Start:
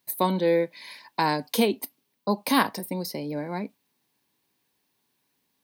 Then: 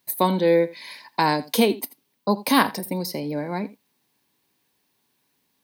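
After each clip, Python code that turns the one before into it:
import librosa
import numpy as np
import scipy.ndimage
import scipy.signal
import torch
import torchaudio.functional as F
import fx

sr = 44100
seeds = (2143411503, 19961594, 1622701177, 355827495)

y = x + 10.0 ** (-19.0 / 20.0) * np.pad(x, (int(83 * sr / 1000.0), 0))[:len(x)]
y = y * 10.0 ** (3.5 / 20.0)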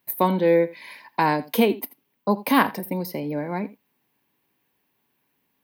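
y = fx.band_shelf(x, sr, hz=6100.0, db=-9.5, octaves=1.7)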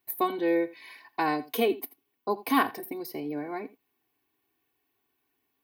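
y = x + 0.91 * np.pad(x, (int(2.7 * sr / 1000.0), 0))[:len(x)]
y = y * 10.0 ** (-8.0 / 20.0)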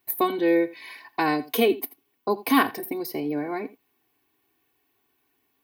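y = fx.dynamic_eq(x, sr, hz=860.0, q=0.93, threshold_db=-36.0, ratio=4.0, max_db=-4)
y = y * 10.0 ** (6.0 / 20.0)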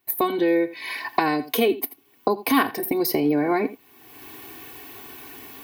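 y = fx.recorder_agc(x, sr, target_db=-13.0, rise_db_per_s=33.0, max_gain_db=30)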